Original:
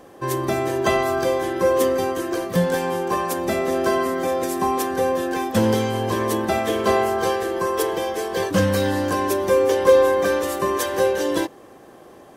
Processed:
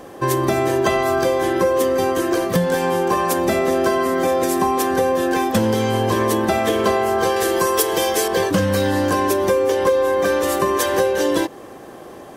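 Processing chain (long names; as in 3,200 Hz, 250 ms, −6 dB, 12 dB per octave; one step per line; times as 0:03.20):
0:07.36–0:08.28: high-shelf EQ 3,300 Hz +11 dB
downward compressor 6 to 1, threshold −22 dBFS, peak gain reduction 12.5 dB
level +7.5 dB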